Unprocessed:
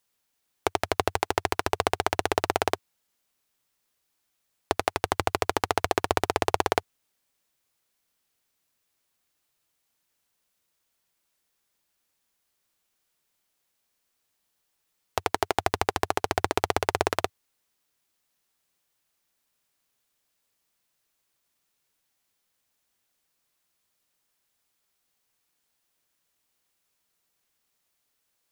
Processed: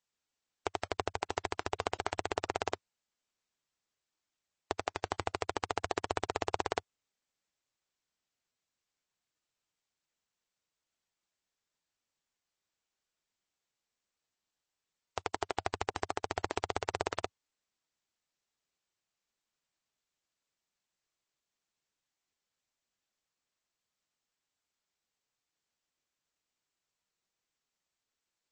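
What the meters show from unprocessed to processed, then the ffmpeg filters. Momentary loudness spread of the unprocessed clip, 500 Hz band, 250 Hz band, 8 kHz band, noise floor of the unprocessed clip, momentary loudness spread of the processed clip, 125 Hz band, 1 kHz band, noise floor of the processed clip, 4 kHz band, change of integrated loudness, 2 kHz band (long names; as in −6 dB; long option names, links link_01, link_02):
5 LU, −9.5 dB, −9.5 dB, −10.0 dB, −77 dBFS, 5 LU, −9.5 dB, −9.5 dB, below −85 dBFS, −9.5 dB, −9.5 dB, −9.5 dB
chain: -af "volume=-9dB" -ar 22050 -c:a libmp3lame -b:a 32k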